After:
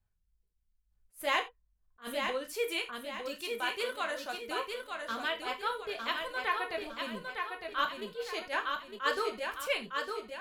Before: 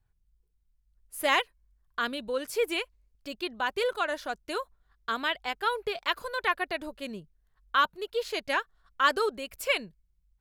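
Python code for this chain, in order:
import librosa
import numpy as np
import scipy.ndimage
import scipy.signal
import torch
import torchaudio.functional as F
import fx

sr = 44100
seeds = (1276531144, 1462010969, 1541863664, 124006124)

y = fx.lowpass(x, sr, hz=1300.0, slope=12, at=(1.39, 2.02))
y = fx.tilt_eq(y, sr, slope=1.5, at=(2.54, 4.37))
y = fx.echo_feedback(y, sr, ms=907, feedback_pct=42, wet_db=-5.0)
y = fx.rev_gated(y, sr, seeds[0], gate_ms=110, shape='falling', drr_db=3.5)
y = fx.attack_slew(y, sr, db_per_s=280.0)
y = y * 10.0 ** (-6.5 / 20.0)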